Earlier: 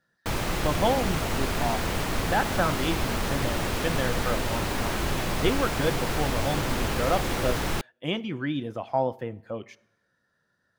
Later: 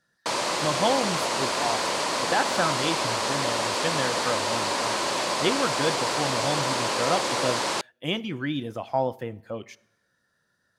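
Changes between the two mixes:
background: add speaker cabinet 300–8900 Hz, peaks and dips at 570 Hz +7 dB, 1000 Hz +9 dB, 4500 Hz +5 dB; master: add high shelf 4200 Hz +9.5 dB

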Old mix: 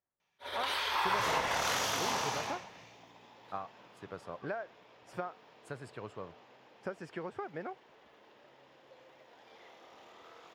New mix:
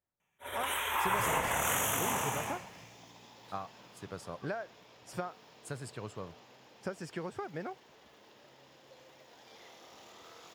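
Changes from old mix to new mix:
first sound: add Butterworth band-stop 4700 Hz, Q 1; master: add tone controls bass +6 dB, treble +13 dB

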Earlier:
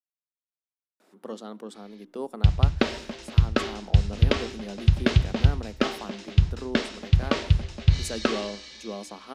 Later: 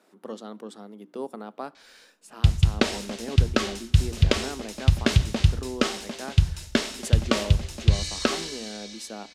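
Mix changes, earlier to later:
speech: entry -1.00 s; background: remove air absorption 130 m

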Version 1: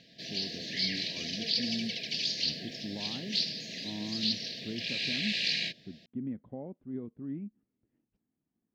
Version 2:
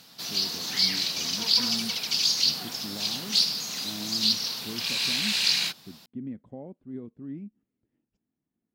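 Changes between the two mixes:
background: remove brick-wall FIR band-stop 710–1600 Hz; master: remove air absorption 220 m

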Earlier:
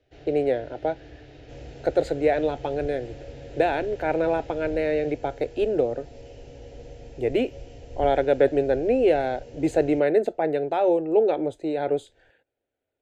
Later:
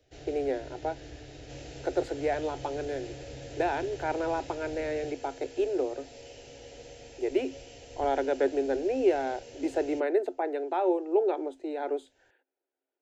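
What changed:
speech: add rippled Chebyshev high-pass 260 Hz, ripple 9 dB; first sound: remove LPF 3400 Hz 12 dB/oct; second sound: add tilt +3 dB/oct

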